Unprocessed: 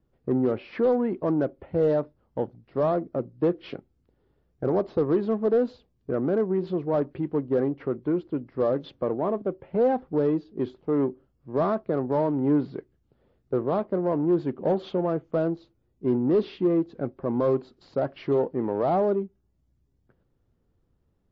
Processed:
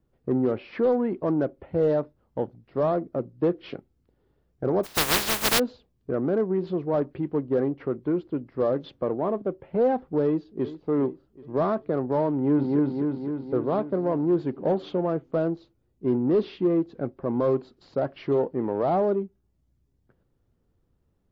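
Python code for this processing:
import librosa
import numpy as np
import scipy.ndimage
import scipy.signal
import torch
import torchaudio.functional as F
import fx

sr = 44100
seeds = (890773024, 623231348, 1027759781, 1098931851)

y = fx.spec_flatten(x, sr, power=0.16, at=(4.83, 5.58), fade=0.02)
y = fx.echo_throw(y, sr, start_s=10.25, length_s=0.42, ms=390, feedback_pct=50, wet_db=-14.5)
y = fx.echo_throw(y, sr, start_s=12.32, length_s=0.46, ms=260, feedback_pct=65, wet_db=-1.0)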